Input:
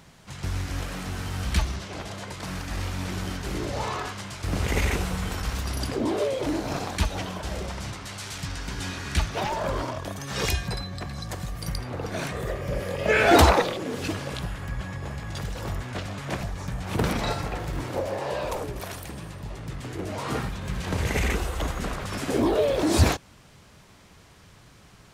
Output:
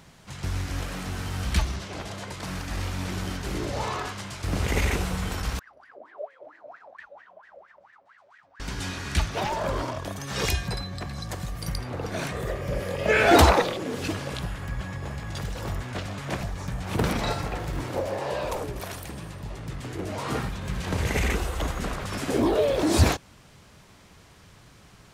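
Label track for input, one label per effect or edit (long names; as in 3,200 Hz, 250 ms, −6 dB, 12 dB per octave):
5.590000	8.600000	LFO wah 4.4 Hz 550–1,900 Hz, Q 19
14.600000	18.090000	floating-point word with a short mantissa of 6 bits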